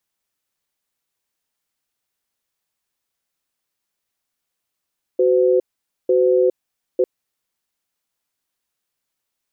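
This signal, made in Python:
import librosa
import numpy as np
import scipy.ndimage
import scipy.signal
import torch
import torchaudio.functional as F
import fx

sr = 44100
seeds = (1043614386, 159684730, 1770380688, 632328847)

y = fx.cadence(sr, length_s=1.85, low_hz=372.0, high_hz=509.0, on_s=0.41, off_s=0.49, level_db=-15.0)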